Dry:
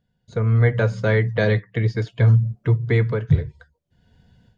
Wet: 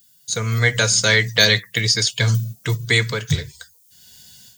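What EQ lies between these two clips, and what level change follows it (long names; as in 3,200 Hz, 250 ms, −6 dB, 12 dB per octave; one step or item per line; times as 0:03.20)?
bass and treble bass +9 dB, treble +14 dB
spectral tilt +4.5 dB per octave
high-shelf EQ 2,600 Hz +9 dB
+1.5 dB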